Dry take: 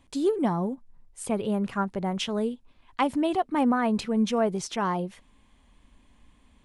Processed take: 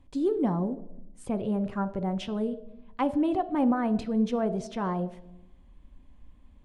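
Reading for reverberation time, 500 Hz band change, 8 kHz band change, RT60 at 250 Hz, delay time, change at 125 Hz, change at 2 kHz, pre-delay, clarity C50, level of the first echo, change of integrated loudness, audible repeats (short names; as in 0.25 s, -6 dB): 0.85 s, -2.5 dB, under -10 dB, 1.3 s, none, 0.0 dB, -7.0 dB, 4 ms, 15.0 dB, none, -1.5 dB, none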